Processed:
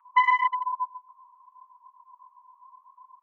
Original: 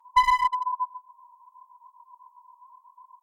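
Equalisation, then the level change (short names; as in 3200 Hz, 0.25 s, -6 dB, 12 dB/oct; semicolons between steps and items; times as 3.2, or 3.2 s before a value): Gaussian blur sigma 1.9 samples; resonant high-pass 1200 Hz, resonance Q 4.9; fixed phaser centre 1900 Hz, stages 4; +2.0 dB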